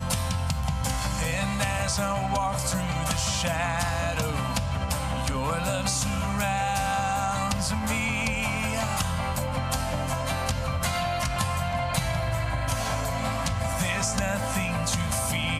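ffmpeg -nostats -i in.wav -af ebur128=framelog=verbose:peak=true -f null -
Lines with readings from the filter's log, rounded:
Integrated loudness:
  I:         -27.0 LUFS
  Threshold: -37.0 LUFS
Loudness range:
  LRA:         1.3 LU
  Threshold: -47.0 LUFS
  LRA low:   -27.6 LUFS
  LRA high:  -26.3 LUFS
True peak:
  Peak:      -10.5 dBFS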